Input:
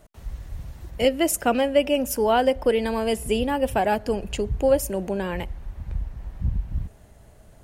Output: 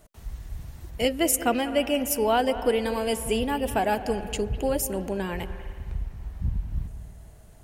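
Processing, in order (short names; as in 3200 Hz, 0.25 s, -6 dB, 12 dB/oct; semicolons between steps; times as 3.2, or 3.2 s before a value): high shelf 5000 Hz +5.5 dB; notch 550 Hz, Q 12; reverb RT60 1.6 s, pre-delay 0.19 s, DRR 11 dB; gain -2.5 dB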